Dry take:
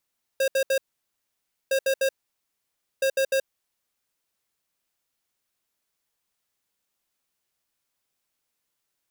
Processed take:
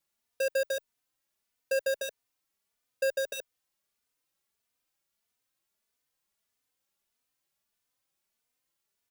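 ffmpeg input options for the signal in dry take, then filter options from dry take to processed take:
-f lavfi -i "aevalsrc='0.0794*(2*lt(mod(537*t,1),0.5)-1)*clip(min(mod(mod(t,1.31),0.15),0.08-mod(mod(t,1.31),0.15))/0.005,0,1)*lt(mod(t,1.31),0.45)':duration=3.93:sample_rate=44100"
-filter_complex "[0:a]acompressor=threshold=-26dB:ratio=6,asplit=2[link_01][link_02];[link_02]adelay=3.2,afreqshift=1.6[link_03];[link_01][link_03]amix=inputs=2:normalize=1"

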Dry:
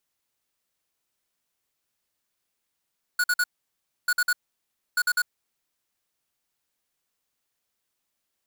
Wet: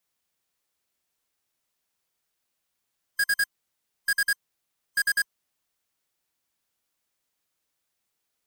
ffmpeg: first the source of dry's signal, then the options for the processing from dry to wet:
-f lavfi -i "aevalsrc='0.0794*(2*lt(mod(1460*t,1),0.5)-1)*clip(min(mod(mod(t,0.89),0.1),0.05-mod(mod(t,0.89),0.1))/0.005,0,1)*lt(mod(t,0.89),0.3)':duration=2.67:sample_rate=44100"
-af "afftfilt=real='real(if(between(b,1,1008),(2*floor((b-1)/48)+1)*48-b,b),0)':imag='imag(if(between(b,1,1008),(2*floor((b-1)/48)+1)*48-b,b),0)*if(between(b,1,1008),-1,1)':win_size=2048:overlap=0.75"

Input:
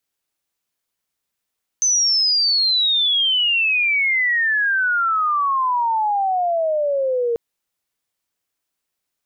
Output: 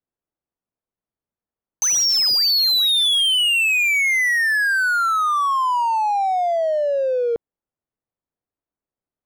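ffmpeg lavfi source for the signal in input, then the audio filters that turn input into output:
-f lavfi -i "aevalsrc='pow(10,(-14-3*t/5.54)/20)*sin(2*PI*6200*5.54/log(460/6200)*(exp(log(460/6200)*t/5.54)-1))':duration=5.54:sample_rate=44100"
-af "adynamicsmooth=sensitivity=6.5:basefreq=920"

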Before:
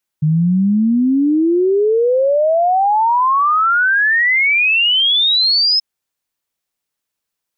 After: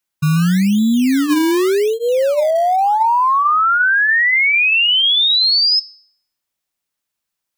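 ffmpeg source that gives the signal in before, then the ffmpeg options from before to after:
-f lavfi -i "aevalsrc='0.299*clip(min(t,5.58-t)/0.01,0,1)*sin(2*PI*150*5.58/log(5200/150)*(exp(log(5200/150)*t/5.58)-1))':duration=5.58:sample_rate=44100"
-filter_complex "[0:a]bandreject=frequency=460:width=12,bandreject=frequency=287.4:width_type=h:width=4,bandreject=frequency=574.8:width_type=h:width=4,bandreject=frequency=862.2:width_type=h:width=4,bandreject=frequency=1149.6:width_type=h:width=4,bandreject=frequency=1437:width_type=h:width=4,bandreject=frequency=1724.4:width_type=h:width=4,bandreject=frequency=2011.8:width_type=h:width=4,bandreject=frequency=2299.2:width_type=h:width=4,bandreject=frequency=2586.6:width_type=h:width=4,bandreject=frequency=2874:width_type=h:width=4,bandreject=frequency=3161.4:width_type=h:width=4,bandreject=frequency=3448.8:width_type=h:width=4,bandreject=frequency=3736.2:width_type=h:width=4,bandreject=frequency=4023.6:width_type=h:width=4,bandreject=frequency=4311:width_type=h:width=4,bandreject=frequency=4598.4:width_type=h:width=4,bandreject=frequency=4885.8:width_type=h:width=4,bandreject=frequency=5173.2:width_type=h:width=4,bandreject=frequency=5460.6:width_type=h:width=4,bandreject=frequency=5748:width_type=h:width=4,bandreject=frequency=6035.4:width_type=h:width=4,bandreject=frequency=6322.8:width_type=h:width=4,bandreject=frequency=6610.2:width_type=h:width=4,bandreject=frequency=6897.6:width_type=h:width=4,bandreject=frequency=7185:width_type=h:width=4,bandreject=frequency=7472.4:width_type=h:width=4,bandreject=frequency=7759.8:width_type=h:width=4,bandreject=frequency=8047.2:width_type=h:width=4,bandreject=frequency=8334.6:width_type=h:width=4,bandreject=frequency=8622:width_type=h:width=4,bandreject=frequency=8909.4:width_type=h:width=4,bandreject=frequency=9196.8:width_type=h:width=4,bandreject=frequency=9484.2:width_type=h:width=4,bandreject=frequency=9771.6:width_type=h:width=4,bandreject=frequency=10059:width_type=h:width=4,bandreject=frequency=10346.4:width_type=h:width=4,bandreject=frequency=10633.8:width_type=h:width=4,acrossover=split=410[link_01][link_02];[link_01]acrusher=samples=23:mix=1:aa=0.000001:lfo=1:lforange=23:lforate=0.87[link_03];[link_03][link_02]amix=inputs=2:normalize=0"

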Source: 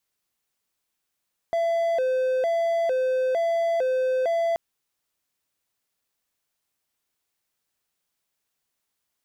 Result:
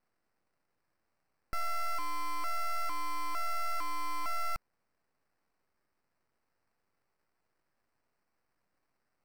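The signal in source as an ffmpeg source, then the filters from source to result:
-f lavfi -i "aevalsrc='0.119*(1-4*abs(mod((593*t+78/1.1*(0.5-abs(mod(1.1*t,1)-0.5)))+0.25,1)-0.5))':duration=3.03:sample_rate=44100"
-filter_complex "[0:a]acrossover=split=1200[link_01][link_02];[link_01]alimiter=level_in=5.5dB:limit=-24dB:level=0:latency=1,volume=-5.5dB[link_03];[link_02]acrusher=samples=13:mix=1:aa=0.000001[link_04];[link_03][link_04]amix=inputs=2:normalize=0,aeval=exprs='abs(val(0))':channel_layout=same"

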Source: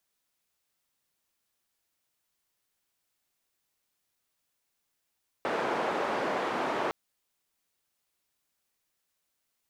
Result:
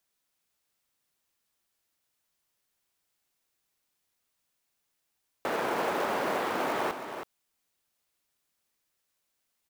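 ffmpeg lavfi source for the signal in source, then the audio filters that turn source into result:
-f lavfi -i "anoisesrc=color=white:duration=1.46:sample_rate=44100:seed=1,highpass=frequency=310,lowpass=frequency=950,volume=-10.8dB"
-filter_complex "[0:a]acrusher=bits=4:mode=log:mix=0:aa=0.000001,asplit=2[link_01][link_02];[link_02]aecho=0:1:323:0.376[link_03];[link_01][link_03]amix=inputs=2:normalize=0"

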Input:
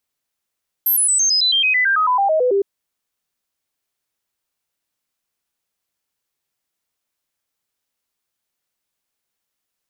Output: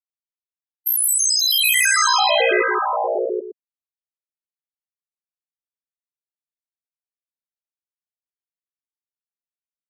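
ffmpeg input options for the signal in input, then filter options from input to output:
-f lavfi -i "aevalsrc='0.224*clip(min(mod(t,0.11),0.11-mod(t,0.11))/0.005,0,1)*sin(2*PI*12700*pow(2,-floor(t/0.11)/3)*mod(t,0.11))':duration=1.76:sample_rate=44100"
-af "afftfilt=real='re*gte(hypot(re,im),0.0224)':imag='im*gte(hypot(re,im),0.0224)':win_size=1024:overlap=0.75,aeval=exprs='val(0)*sin(2*PI*30*n/s)':channel_layout=same,aecho=1:1:171|526|638|782|899:0.501|0.126|0.473|0.631|0.211"

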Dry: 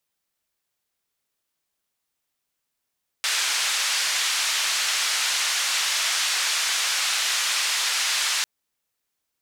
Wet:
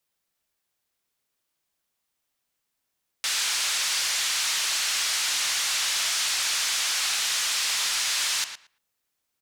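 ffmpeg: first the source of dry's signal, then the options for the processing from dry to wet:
-f lavfi -i "anoisesrc=color=white:duration=5.2:sample_rate=44100:seed=1,highpass=frequency=1300,lowpass=frequency=6200,volume=-12.8dB"
-filter_complex "[0:a]acrossover=split=3300[link_01][link_02];[link_01]alimiter=level_in=0.5dB:limit=-24dB:level=0:latency=1,volume=-0.5dB[link_03];[link_03][link_02]amix=inputs=2:normalize=0,asoftclip=type=tanh:threshold=-17.5dB,asplit=2[link_04][link_05];[link_05]adelay=114,lowpass=frequency=3500:poles=1,volume=-8dB,asplit=2[link_06][link_07];[link_07]adelay=114,lowpass=frequency=3500:poles=1,volume=0.17,asplit=2[link_08][link_09];[link_09]adelay=114,lowpass=frequency=3500:poles=1,volume=0.17[link_10];[link_04][link_06][link_08][link_10]amix=inputs=4:normalize=0"

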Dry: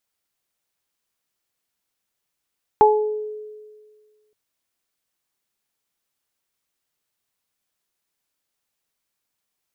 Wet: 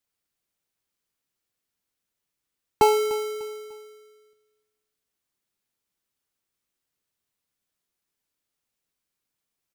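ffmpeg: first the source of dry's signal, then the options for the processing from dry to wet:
-f lavfi -i "aevalsrc='0.251*pow(10,-3*t/1.74)*sin(2*PI*426*t)+0.422*pow(10,-3*t/0.45)*sin(2*PI*852*t)':duration=1.52:sample_rate=44100"
-filter_complex "[0:a]aecho=1:1:298|596|894:0.112|0.0404|0.0145,acrossover=split=290|560[link_01][link_02][link_03];[link_02]acrusher=samples=25:mix=1:aa=0.000001[link_04];[link_03]flanger=delay=8.5:depth=2.7:regen=-48:speed=0.5:shape=triangular[link_05];[link_01][link_04][link_05]amix=inputs=3:normalize=0"

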